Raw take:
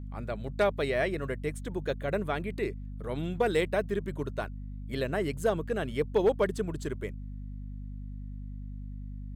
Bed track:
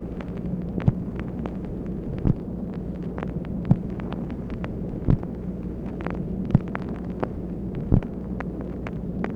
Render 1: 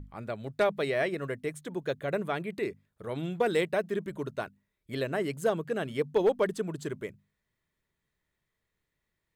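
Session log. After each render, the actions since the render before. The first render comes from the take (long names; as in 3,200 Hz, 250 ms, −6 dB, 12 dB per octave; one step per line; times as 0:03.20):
mains-hum notches 50/100/150/200/250 Hz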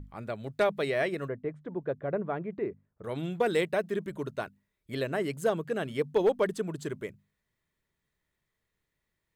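0:01.28–0:03.04: low-pass filter 1,200 Hz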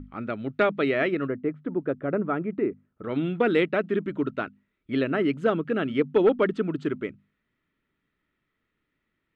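low-pass with resonance 2,800 Hz, resonance Q 1.9
hollow resonant body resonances 270/1,300 Hz, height 13 dB, ringing for 25 ms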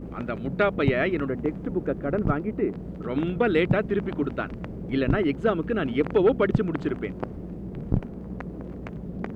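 mix in bed track −5 dB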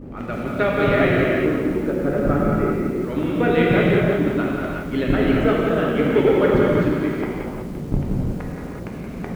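reverb whose tail is shaped and stops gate 400 ms flat, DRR −4.5 dB
feedback echo at a low word length 173 ms, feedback 55%, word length 7 bits, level −9 dB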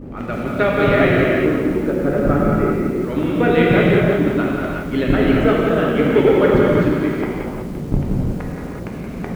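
level +3 dB
brickwall limiter −2 dBFS, peak gain reduction 1 dB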